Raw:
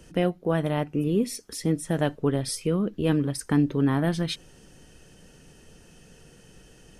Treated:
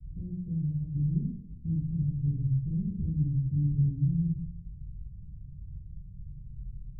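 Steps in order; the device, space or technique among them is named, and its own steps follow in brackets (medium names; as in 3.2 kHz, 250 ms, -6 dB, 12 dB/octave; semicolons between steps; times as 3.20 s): club heard from the street (peak limiter -20 dBFS, peak gain reduction 10 dB; low-pass 120 Hz 24 dB/octave; reverberation RT60 0.75 s, pre-delay 7 ms, DRR -7 dB); trim +6 dB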